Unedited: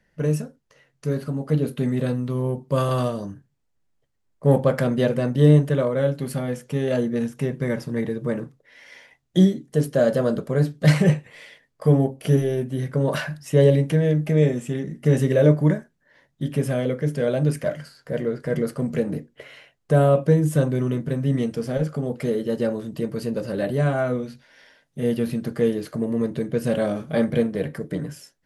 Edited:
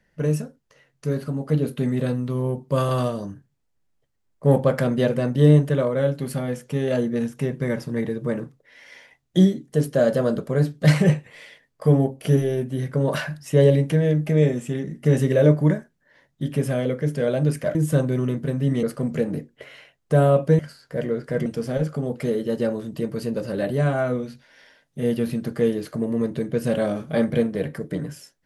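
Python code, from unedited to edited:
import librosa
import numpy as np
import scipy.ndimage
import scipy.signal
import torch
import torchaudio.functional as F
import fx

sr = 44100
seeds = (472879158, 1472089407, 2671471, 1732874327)

y = fx.edit(x, sr, fx.swap(start_s=17.75, length_s=0.87, other_s=20.38, other_length_s=1.08), tone=tone)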